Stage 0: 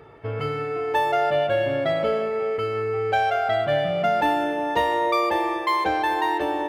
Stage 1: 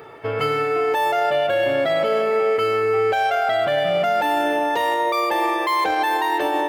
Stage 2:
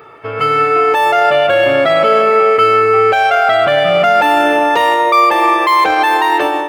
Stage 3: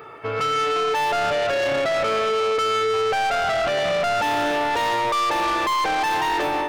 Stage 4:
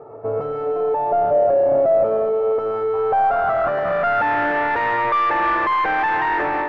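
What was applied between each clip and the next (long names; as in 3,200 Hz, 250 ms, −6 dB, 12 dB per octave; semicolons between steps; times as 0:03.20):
high-pass filter 370 Hz 6 dB per octave; high-shelf EQ 8,500 Hz +10 dB; brickwall limiter −21 dBFS, peak gain reduction 10 dB; level +8.5 dB
thirty-one-band graphic EQ 1,250 Hz +9 dB, 2,500 Hz +5 dB, 12,500 Hz −7 dB; automatic gain control
in parallel at 0 dB: brickwall limiter −8.5 dBFS, peak gain reduction 7 dB; on the sum: soft clipping −11.5 dBFS, distortion −9 dB; level −8 dB
running median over 15 samples; echo ahead of the sound 142 ms −18 dB; low-pass filter sweep 660 Hz → 1,800 Hz, 0:02.39–0:04.43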